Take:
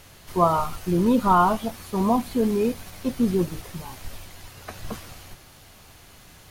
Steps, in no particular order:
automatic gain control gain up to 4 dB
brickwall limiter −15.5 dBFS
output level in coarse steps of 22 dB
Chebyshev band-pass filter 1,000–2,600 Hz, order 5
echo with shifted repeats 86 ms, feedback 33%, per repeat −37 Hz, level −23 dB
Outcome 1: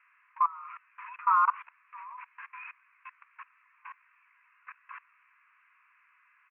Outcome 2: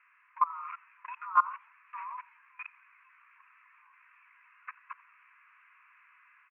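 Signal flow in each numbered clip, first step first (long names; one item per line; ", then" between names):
echo with shifted repeats, then Chebyshev band-pass filter, then brickwall limiter, then automatic gain control, then output level in coarse steps
Chebyshev band-pass filter, then brickwall limiter, then output level in coarse steps, then automatic gain control, then echo with shifted repeats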